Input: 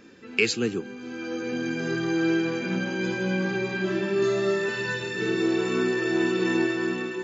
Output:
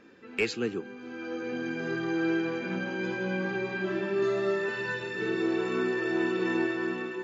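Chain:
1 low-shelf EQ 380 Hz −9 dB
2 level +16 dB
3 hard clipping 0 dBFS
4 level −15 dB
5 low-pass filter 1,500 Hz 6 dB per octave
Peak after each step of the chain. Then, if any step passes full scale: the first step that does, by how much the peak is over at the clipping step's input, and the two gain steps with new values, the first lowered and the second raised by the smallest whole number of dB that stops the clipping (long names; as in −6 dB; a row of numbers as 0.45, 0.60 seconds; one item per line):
−8.0, +8.0, 0.0, −15.0, −16.5 dBFS
step 2, 8.0 dB
step 2 +8 dB, step 4 −7 dB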